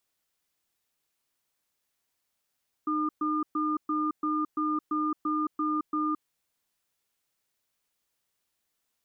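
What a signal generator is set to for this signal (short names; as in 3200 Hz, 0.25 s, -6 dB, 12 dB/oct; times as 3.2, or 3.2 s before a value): cadence 306 Hz, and 1210 Hz, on 0.22 s, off 0.12 s, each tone -28 dBFS 3.37 s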